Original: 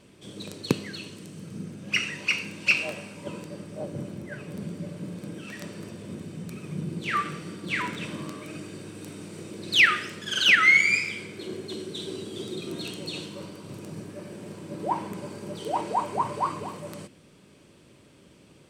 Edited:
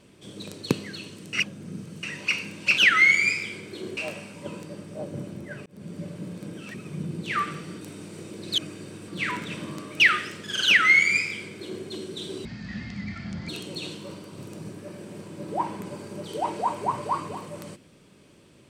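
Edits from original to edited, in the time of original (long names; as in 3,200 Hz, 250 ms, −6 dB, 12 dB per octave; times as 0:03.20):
0:01.33–0:02.03: reverse
0:04.47–0:04.80: fade in
0:05.55–0:06.52: remove
0:07.59–0:08.51: swap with 0:09.01–0:09.78
0:10.44–0:11.63: duplicate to 0:02.78
0:12.23–0:12.80: play speed 55%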